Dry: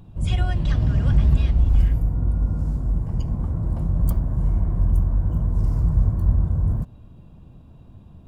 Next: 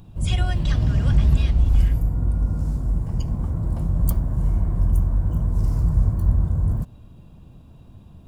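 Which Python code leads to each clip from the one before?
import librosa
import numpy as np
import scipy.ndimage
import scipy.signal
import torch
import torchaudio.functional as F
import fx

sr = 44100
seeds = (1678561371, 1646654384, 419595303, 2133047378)

y = fx.high_shelf(x, sr, hz=3300.0, db=8.0)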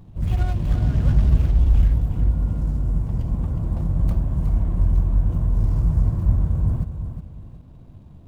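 y = scipy.ndimage.median_filter(x, 25, mode='constant')
y = fx.echo_feedback(y, sr, ms=364, feedback_pct=33, wet_db=-9)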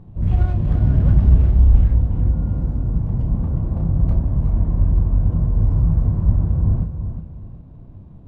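y = fx.lowpass(x, sr, hz=1000.0, slope=6)
y = fx.doubler(y, sr, ms=31.0, db=-6.5)
y = F.gain(torch.from_numpy(y), 3.0).numpy()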